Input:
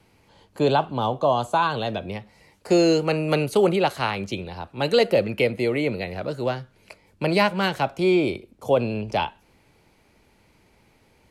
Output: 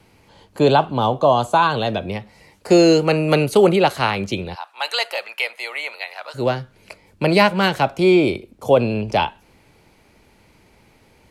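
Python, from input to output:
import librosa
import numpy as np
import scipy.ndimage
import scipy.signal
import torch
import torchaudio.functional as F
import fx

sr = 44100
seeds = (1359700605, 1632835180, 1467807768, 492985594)

y = fx.cheby1_highpass(x, sr, hz=880.0, order=3, at=(4.54, 6.34), fade=0.02)
y = y * 10.0 ** (5.5 / 20.0)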